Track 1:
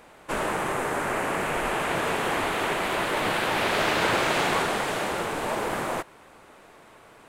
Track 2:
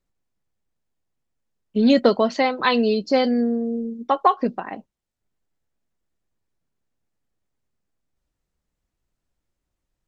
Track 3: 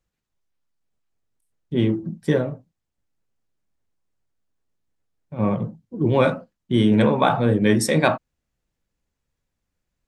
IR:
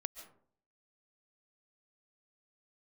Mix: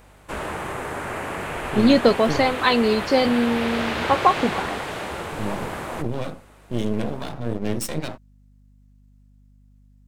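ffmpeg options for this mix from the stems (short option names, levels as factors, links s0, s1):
-filter_complex "[0:a]acrossover=split=4900[s0][s1];[s1]acompressor=threshold=0.00398:ratio=4:attack=1:release=60[s2];[s0][s2]amix=inputs=2:normalize=0,equalizer=f=72:w=1.2:g=12,volume=0.708[s3];[1:a]volume=1[s4];[2:a]acrossover=split=480|3000[s5][s6][s7];[s6]acompressor=threshold=0.0316:ratio=6[s8];[s5][s8][s7]amix=inputs=3:normalize=0,aeval=exprs='max(val(0),0)':c=same,volume=0.631[s9];[s3][s4][s9]amix=inputs=3:normalize=0,highshelf=f=5400:g=6,aeval=exprs='val(0)+0.00251*(sin(2*PI*50*n/s)+sin(2*PI*2*50*n/s)/2+sin(2*PI*3*50*n/s)/3+sin(2*PI*4*50*n/s)/4+sin(2*PI*5*50*n/s)/5)':c=same"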